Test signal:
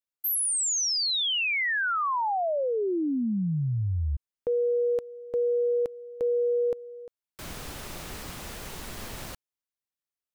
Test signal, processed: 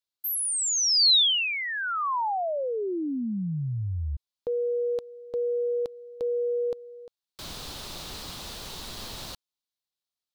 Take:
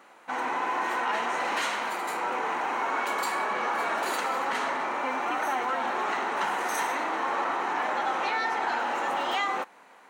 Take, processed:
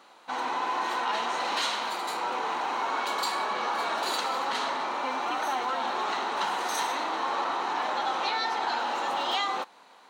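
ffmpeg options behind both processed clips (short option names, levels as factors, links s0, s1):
-af "equalizer=f=1000:t=o:w=1:g=3,equalizer=f=2000:t=o:w=1:g=-5,equalizer=f=4000:t=o:w=1:g=12,volume=0.75"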